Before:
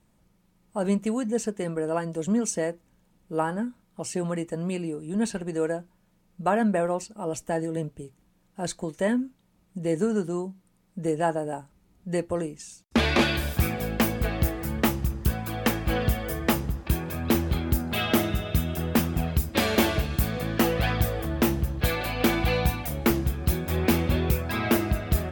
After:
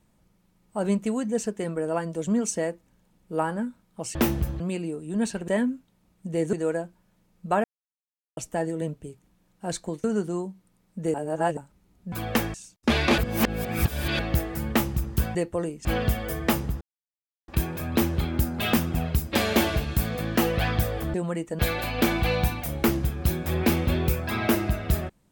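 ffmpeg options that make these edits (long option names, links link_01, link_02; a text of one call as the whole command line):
ffmpeg -i in.wav -filter_complex "[0:a]asplit=20[link_01][link_02][link_03][link_04][link_05][link_06][link_07][link_08][link_09][link_10][link_11][link_12][link_13][link_14][link_15][link_16][link_17][link_18][link_19][link_20];[link_01]atrim=end=4.152[link_21];[link_02]atrim=start=21.358:end=21.812[link_22];[link_03]atrim=start=4.598:end=5.482[link_23];[link_04]atrim=start=8.988:end=10.042[link_24];[link_05]atrim=start=5.478:end=6.59,asetpts=PTS-STARTPTS,afade=type=out:start_time=1.108:duration=0.004:curve=hsin[link_25];[link_06]atrim=start=6.59:end=7.32,asetpts=PTS-STARTPTS,volume=0[link_26];[link_07]atrim=start=7.32:end=8.992,asetpts=PTS-STARTPTS,afade=type=in:duration=0.004:curve=hsin[link_27];[link_08]atrim=start=10.038:end=11.142[link_28];[link_09]atrim=start=11.138:end=11.572,asetpts=PTS-STARTPTS,areverse[link_29];[link_10]atrim=start=11.568:end=12.122[link_30];[link_11]atrim=start=15.428:end=15.852[link_31];[link_12]atrim=start=12.618:end=13.262[link_32];[link_13]atrim=start=13.258:end=14.272,asetpts=PTS-STARTPTS,areverse[link_33];[link_14]atrim=start=14.268:end=15.432[link_34];[link_15]atrim=start=12.118:end=12.622[link_35];[link_16]atrim=start=15.848:end=16.81,asetpts=PTS-STARTPTS,afade=type=out:start_time=0.958:duration=0.004:curve=hsin,apad=pad_dur=0.67[link_36];[link_17]atrim=start=16.81:end=18.062,asetpts=PTS-STARTPTS,afade=type=in:duration=0.004:curve=hsin[link_37];[link_18]atrim=start=18.948:end=21.362[link_38];[link_19]atrim=start=4.148:end=4.602[link_39];[link_20]atrim=start=21.808[link_40];[link_21][link_22]acrossfade=duration=0.004:curve1=hsin:curve2=hsin[link_41];[link_41][link_23]acrossfade=duration=0.004:curve1=hsin:curve2=hsin[link_42];[link_42][link_24]acrossfade=duration=0.004:curve1=hsin:curve2=hsin[link_43];[link_25][link_26][link_27]concat=n=3:v=0:a=1[link_44];[link_43][link_44]acrossfade=duration=0.004:curve1=hsin:curve2=hsin[link_45];[link_45][link_28]acrossfade=duration=0.004:curve1=hsin:curve2=hsin[link_46];[link_46][link_29]acrossfade=duration=0.004:curve1=hsin:curve2=hsin[link_47];[link_47][link_30]acrossfade=duration=0.004:curve1=hsin:curve2=hsin[link_48];[link_48][link_31]acrossfade=duration=0.004:curve1=hsin:curve2=hsin[link_49];[link_49][link_32]acrossfade=duration=0.004:curve1=hsin:curve2=hsin[link_50];[link_50][link_33]acrossfade=duration=0.004:curve1=hsin:curve2=hsin[link_51];[link_51][link_34]acrossfade=duration=0.004:curve1=hsin:curve2=hsin[link_52];[link_52][link_35]acrossfade=duration=0.004:curve1=hsin:curve2=hsin[link_53];[link_36][link_37]concat=n=2:v=0:a=1[link_54];[link_53][link_54]acrossfade=duration=0.004:curve1=hsin:curve2=hsin[link_55];[link_55][link_38]acrossfade=duration=0.004:curve1=hsin:curve2=hsin[link_56];[link_56][link_39]acrossfade=duration=0.004:curve1=hsin:curve2=hsin[link_57];[link_57][link_40]acrossfade=duration=0.004:curve1=hsin:curve2=hsin" out.wav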